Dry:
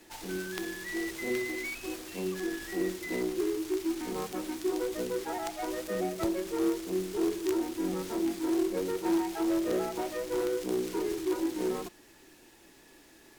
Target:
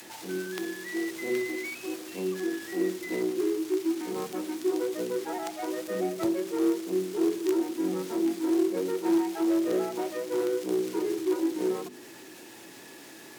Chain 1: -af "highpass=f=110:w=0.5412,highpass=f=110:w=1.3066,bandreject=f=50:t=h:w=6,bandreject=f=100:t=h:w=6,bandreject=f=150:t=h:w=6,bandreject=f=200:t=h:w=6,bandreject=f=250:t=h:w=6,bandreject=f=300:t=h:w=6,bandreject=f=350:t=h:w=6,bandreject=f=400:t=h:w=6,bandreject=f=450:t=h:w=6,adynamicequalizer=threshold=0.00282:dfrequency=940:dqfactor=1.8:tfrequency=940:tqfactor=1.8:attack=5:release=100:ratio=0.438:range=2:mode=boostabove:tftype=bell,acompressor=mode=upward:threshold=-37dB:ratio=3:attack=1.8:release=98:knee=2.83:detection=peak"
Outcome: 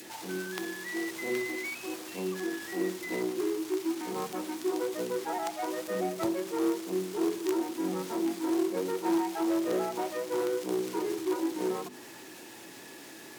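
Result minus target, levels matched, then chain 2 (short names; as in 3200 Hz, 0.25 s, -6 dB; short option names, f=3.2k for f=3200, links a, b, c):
1000 Hz band +5.5 dB
-af "highpass=f=110:w=0.5412,highpass=f=110:w=1.3066,bandreject=f=50:t=h:w=6,bandreject=f=100:t=h:w=6,bandreject=f=150:t=h:w=6,bandreject=f=200:t=h:w=6,bandreject=f=250:t=h:w=6,bandreject=f=300:t=h:w=6,bandreject=f=350:t=h:w=6,bandreject=f=400:t=h:w=6,bandreject=f=450:t=h:w=6,adynamicequalizer=threshold=0.00282:dfrequency=350:dqfactor=1.8:tfrequency=350:tqfactor=1.8:attack=5:release=100:ratio=0.438:range=2:mode=boostabove:tftype=bell,acompressor=mode=upward:threshold=-37dB:ratio=3:attack=1.8:release=98:knee=2.83:detection=peak"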